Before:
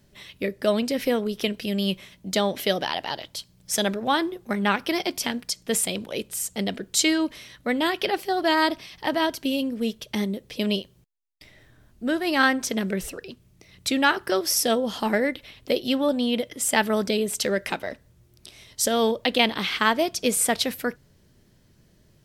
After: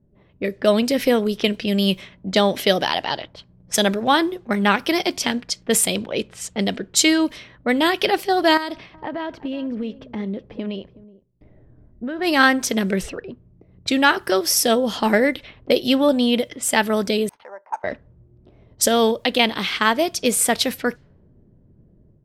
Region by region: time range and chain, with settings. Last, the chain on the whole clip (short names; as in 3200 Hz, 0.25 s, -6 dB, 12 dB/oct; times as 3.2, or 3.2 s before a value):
8.57–12.19 compressor 10:1, threshold -29 dBFS + echo 0.373 s -18 dB
17.29–17.84 ladder band-pass 950 Hz, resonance 80% + careless resampling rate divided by 6×, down none, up hold
whole clip: low-pass opened by the level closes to 450 Hz, open at -22.5 dBFS; AGC gain up to 6.5 dB